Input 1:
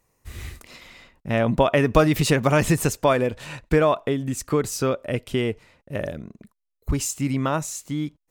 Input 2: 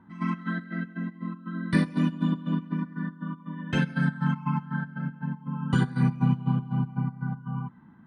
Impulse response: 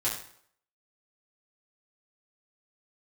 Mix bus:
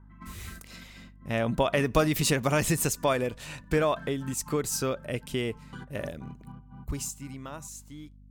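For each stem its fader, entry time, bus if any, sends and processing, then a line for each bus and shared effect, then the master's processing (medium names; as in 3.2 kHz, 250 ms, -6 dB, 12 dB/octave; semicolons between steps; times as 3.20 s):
6.83 s -7 dB -> 7.15 s -17.5 dB, 0.00 s, no send, expander -46 dBFS; treble shelf 3.7 kHz +8.5 dB
-3.5 dB, 0.00 s, no send, local Wiener filter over 9 samples; bass shelf 340 Hz -9.5 dB; auto duck -10 dB, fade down 0.30 s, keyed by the first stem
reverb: none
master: hum 50 Hz, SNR 22 dB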